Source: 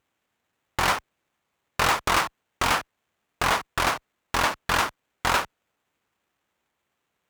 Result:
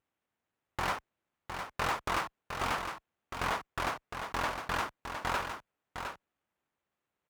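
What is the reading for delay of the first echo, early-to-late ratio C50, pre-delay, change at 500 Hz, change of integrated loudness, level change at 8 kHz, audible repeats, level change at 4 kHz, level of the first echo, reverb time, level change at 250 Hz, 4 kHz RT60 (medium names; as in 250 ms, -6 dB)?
709 ms, no reverb, no reverb, -8.0 dB, -10.5 dB, -14.0 dB, 1, -12.5 dB, -7.0 dB, no reverb, -8.0 dB, no reverb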